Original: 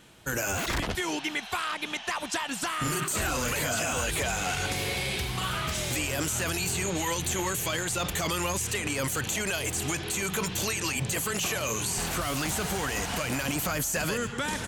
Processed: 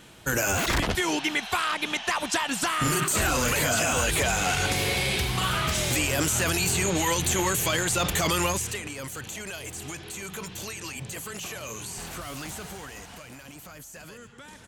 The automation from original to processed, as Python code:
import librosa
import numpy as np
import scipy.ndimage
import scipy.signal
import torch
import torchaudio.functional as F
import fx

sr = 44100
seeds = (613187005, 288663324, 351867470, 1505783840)

y = fx.gain(x, sr, db=fx.line((8.45, 4.5), (8.93, -7.0), (12.49, -7.0), (13.4, -15.5)))